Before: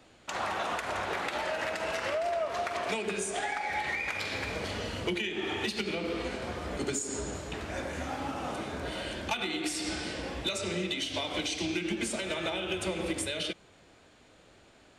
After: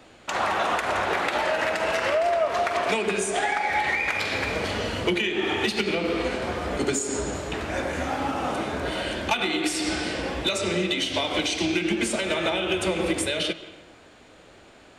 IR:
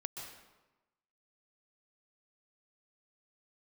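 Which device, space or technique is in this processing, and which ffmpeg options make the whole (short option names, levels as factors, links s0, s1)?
filtered reverb send: -filter_complex "[0:a]asplit=2[s0][s1];[s1]highpass=180,lowpass=3900[s2];[1:a]atrim=start_sample=2205[s3];[s2][s3]afir=irnorm=-1:irlink=0,volume=0.447[s4];[s0][s4]amix=inputs=2:normalize=0,volume=2"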